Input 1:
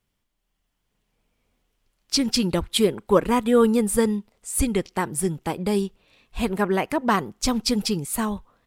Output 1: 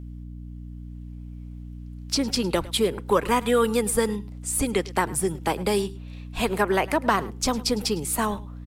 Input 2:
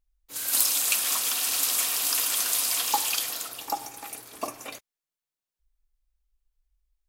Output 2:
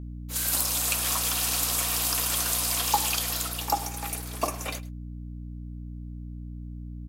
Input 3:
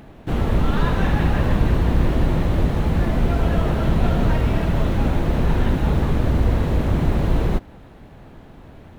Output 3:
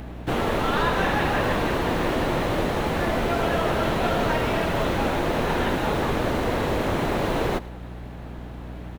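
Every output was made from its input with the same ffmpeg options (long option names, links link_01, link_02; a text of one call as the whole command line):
ffmpeg -i in.wav -filter_complex "[0:a]lowshelf=frequency=150:gain=-9,acrossover=split=110|310|1200[link_01][link_02][link_03][link_04];[link_01]acompressor=threshold=-35dB:ratio=4[link_05];[link_02]acompressor=threshold=-40dB:ratio=4[link_06];[link_03]acompressor=threshold=-26dB:ratio=4[link_07];[link_04]acompressor=threshold=-30dB:ratio=4[link_08];[link_05][link_06][link_07][link_08]amix=inputs=4:normalize=0,aeval=exprs='val(0)+0.00891*(sin(2*PI*60*n/s)+sin(2*PI*2*60*n/s)/2+sin(2*PI*3*60*n/s)/3+sin(2*PI*4*60*n/s)/4+sin(2*PI*5*60*n/s)/5)':channel_layout=same,aecho=1:1:106:0.1,volume=5dB" out.wav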